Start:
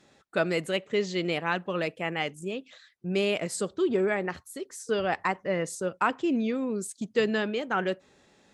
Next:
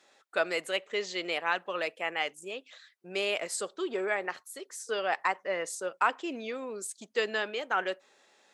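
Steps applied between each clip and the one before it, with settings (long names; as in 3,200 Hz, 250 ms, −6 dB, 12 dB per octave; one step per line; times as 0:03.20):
high-pass filter 560 Hz 12 dB per octave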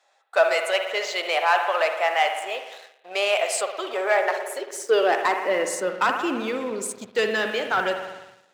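spring reverb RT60 1.4 s, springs 55 ms, chirp 30 ms, DRR 6.5 dB
leveller curve on the samples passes 2
high-pass filter sweep 700 Hz → 120 Hz, 0:04.08–0:06.62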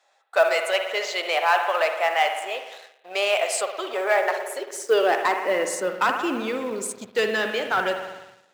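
floating-point word with a short mantissa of 4 bits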